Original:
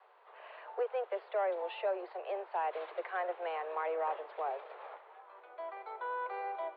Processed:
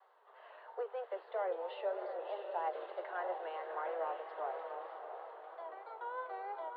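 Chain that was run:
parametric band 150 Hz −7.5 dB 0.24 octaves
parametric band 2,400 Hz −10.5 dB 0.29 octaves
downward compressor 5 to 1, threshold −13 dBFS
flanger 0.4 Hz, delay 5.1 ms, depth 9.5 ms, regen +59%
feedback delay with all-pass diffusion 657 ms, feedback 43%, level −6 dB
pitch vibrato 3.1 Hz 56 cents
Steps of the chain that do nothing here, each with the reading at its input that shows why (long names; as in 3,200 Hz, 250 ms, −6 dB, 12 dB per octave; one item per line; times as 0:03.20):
parametric band 150 Hz: nothing at its input below 300 Hz
downward compressor, threshold −13 dBFS: peak of its input −24.5 dBFS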